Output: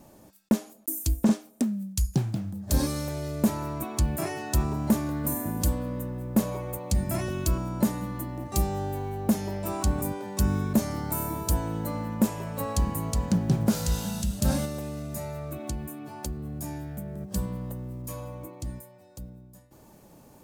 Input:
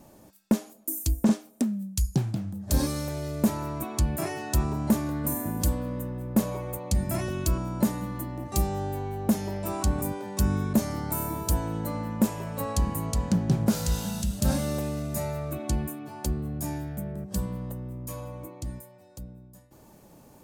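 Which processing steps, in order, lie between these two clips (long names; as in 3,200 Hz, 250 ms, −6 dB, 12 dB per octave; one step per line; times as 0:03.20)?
one scale factor per block 7 bits
0:14.65–0:17.21: downward compressor 2 to 1, threshold −34 dBFS, peak gain reduction 7 dB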